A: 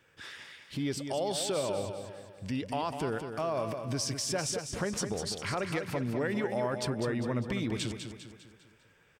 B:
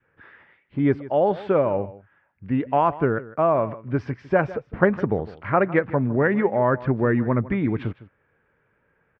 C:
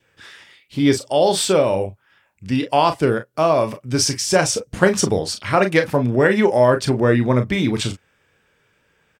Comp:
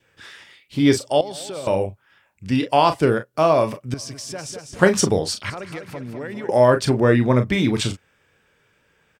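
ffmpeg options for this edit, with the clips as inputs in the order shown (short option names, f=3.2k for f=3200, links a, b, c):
-filter_complex "[0:a]asplit=3[a][b][c];[2:a]asplit=4[d][e][f][g];[d]atrim=end=1.212[h];[a]atrim=start=1.208:end=1.672[i];[e]atrim=start=1.668:end=3.942[j];[b]atrim=start=3.938:end=4.792[k];[f]atrim=start=4.788:end=5.502[l];[c]atrim=start=5.498:end=6.492[m];[g]atrim=start=6.488[n];[h][i]acrossfade=d=0.004:c1=hsin:c2=hsin[o];[o][j]acrossfade=d=0.004:c1=hsin:c2=hsin[p];[p][k]acrossfade=d=0.004:c1=hsin:c2=hsin[q];[q][l]acrossfade=d=0.004:c1=hsin:c2=hsin[r];[r][m]acrossfade=d=0.004:c1=hsin:c2=hsin[s];[s][n]acrossfade=d=0.004:c1=hsin:c2=hsin"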